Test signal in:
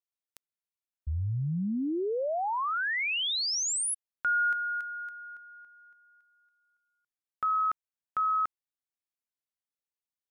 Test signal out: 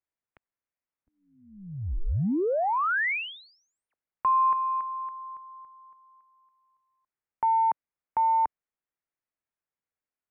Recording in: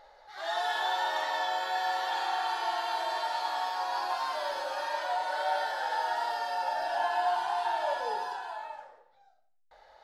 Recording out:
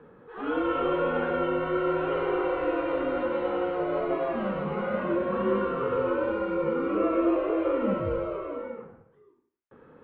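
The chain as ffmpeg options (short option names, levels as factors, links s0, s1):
-af "equalizer=f=74:t=o:w=0.54:g=-7.5,aeval=exprs='0.133*(cos(1*acos(clip(val(0)/0.133,-1,1)))-cos(1*PI/2))+0.00119*(cos(6*acos(clip(val(0)/0.133,-1,1)))-cos(6*PI/2))':c=same,highpass=f=320:t=q:w=0.5412,highpass=f=320:t=q:w=1.307,lowpass=f=2700:t=q:w=0.5176,lowpass=f=2700:t=q:w=0.7071,lowpass=f=2700:t=q:w=1.932,afreqshift=-380,volume=1.68"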